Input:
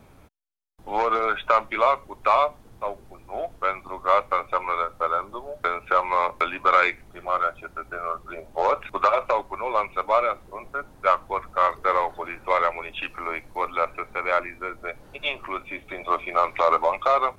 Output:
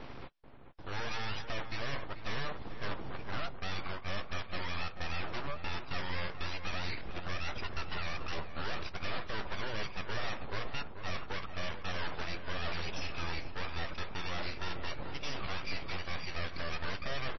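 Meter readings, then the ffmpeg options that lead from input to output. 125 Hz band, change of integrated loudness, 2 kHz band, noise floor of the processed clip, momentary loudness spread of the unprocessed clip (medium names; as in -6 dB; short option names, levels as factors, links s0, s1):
no reading, -15.0 dB, -9.5 dB, -44 dBFS, 13 LU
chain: -filter_complex "[0:a]lowpass=5400,areverse,acompressor=threshold=0.0251:ratio=12,areverse,alimiter=level_in=1.68:limit=0.0631:level=0:latency=1:release=80,volume=0.596,aeval=exprs='0.0376*(cos(1*acos(clip(val(0)/0.0376,-1,1)))-cos(1*PI/2))+0.000531*(cos(3*acos(clip(val(0)/0.0376,-1,1)))-cos(3*PI/2))+0.0075*(cos(5*acos(clip(val(0)/0.0376,-1,1)))-cos(5*PI/2))+0.00335*(cos(8*acos(clip(val(0)/0.0376,-1,1)))-cos(8*PI/2))':c=same,aeval=exprs='abs(val(0))':c=same,asplit=2[s0][s1];[s1]adelay=437,lowpass=f=1600:p=1,volume=0.376,asplit=2[s2][s3];[s3]adelay=437,lowpass=f=1600:p=1,volume=0.38,asplit=2[s4][s5];[s5]adelay=437,lowpass=f=1600:p=1,volume=0.38,asplit=2[s6][s7];[s7]adelay=437,lowpass=f=1600:p=1,volume=0.38[s8];[s0][s2][s4][s6][s8]amix=inputs=5:normalize=0,volume=1.41" -ar 22050 -c:a libmp3lame -b:a 24k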